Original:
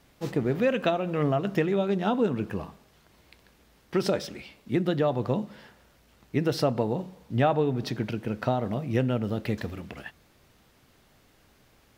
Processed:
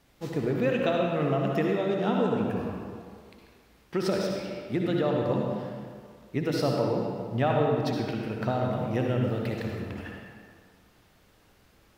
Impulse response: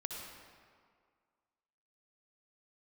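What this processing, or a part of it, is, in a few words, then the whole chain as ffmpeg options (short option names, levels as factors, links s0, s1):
stairwell: -filter_complex "[1:a]atrim=start_sample=2205[s0];[0:a][s0]afir=irnorm=-1:irlink=0"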